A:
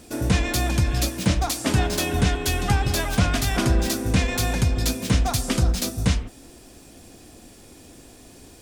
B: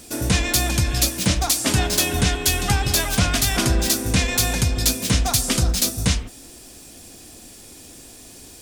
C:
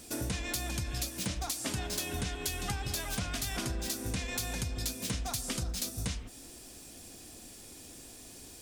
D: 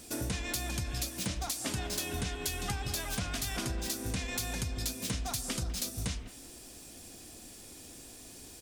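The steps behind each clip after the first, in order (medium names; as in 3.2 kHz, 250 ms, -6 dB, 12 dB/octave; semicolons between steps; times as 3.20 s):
treble shelf 2.8 kHz +9.5 dB
compression, threshold -25 dBFS, peak gain reduction 11 dB; trim -7 dB
speakerphone echo 200 ms, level -15 dB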